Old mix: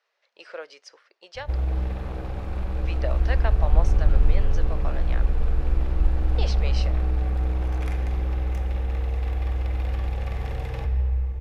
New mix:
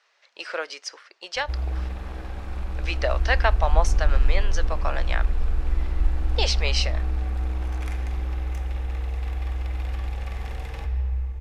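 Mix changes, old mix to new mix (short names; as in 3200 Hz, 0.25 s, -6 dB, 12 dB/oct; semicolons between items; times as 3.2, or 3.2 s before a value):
speech +11.0 dB; master: add ten-band EQ 125 Hz -11 dB, 500 Hz -6 dB, 8000 Hz +4 dB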